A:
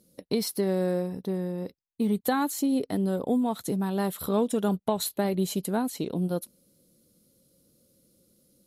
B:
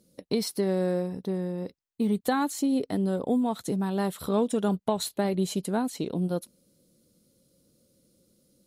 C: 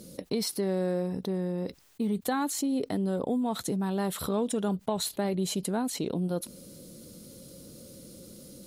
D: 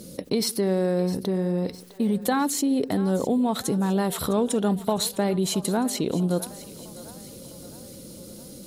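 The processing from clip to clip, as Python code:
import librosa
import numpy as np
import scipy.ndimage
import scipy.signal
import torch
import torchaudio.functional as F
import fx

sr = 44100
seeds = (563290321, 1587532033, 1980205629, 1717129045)

y1 = fx.peak_eq(x, sr, hz=12000.0, db=-12.0, octaves=0.21)
y2 = fx.env_flatten(y1, sr, amount_pct=50)
y2 = F.gain(torch.from_numpy(y2), -4.5).numpy()
y3 = fx.echo_split(y2, sr, split_hz=460.0, low_ms=83, high_ms=657, feedback_pct=52, wet_db=-15.5)
y3 = F.gain(torch.from_numpy(y3), 5.5).numpy()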